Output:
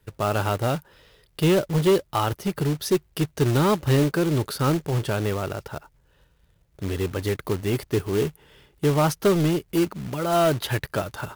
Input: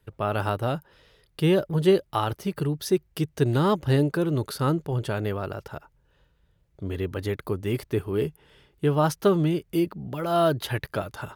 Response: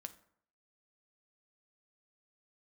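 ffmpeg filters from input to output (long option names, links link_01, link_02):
-af "aeval=exprs='0.398*(cos(1*acos(clip(val(0)/0.398,-1,1)))-cos(1*PI/2))+0.0316*(cos(2*acos(clip(val(0)/0.398,-1,1)))-cos(2*PI/2))+0.0708*(cos(5*acos(clip(val(0)/0.398,-1,1)))-cos(5*PI/2))+0.00562*(cos(7*acos(clip(val(0)/0.398,-1,1)))-cos(7*PI/2))':channel_layout=same,acrusher=bits=3:mode=log:mix=0:aa=0.000001,volume=-2dB"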